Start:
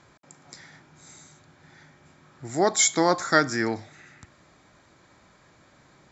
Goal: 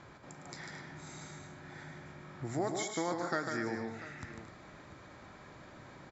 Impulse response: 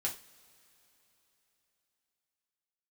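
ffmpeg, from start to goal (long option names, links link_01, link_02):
-filter_complex "[0:a]acompressor=threshold=-41dB:ratio=3,lowpass=frequency=2700:poles=1,asplit=2[link_01][link_02];[link_02]aecho=0:1:107|147|222|253|692:0.237|0.562|0.237|0.2|0.158[link_03];[link_01][link_03]amix=inputs=2:normalize=0,volume=3.5dB"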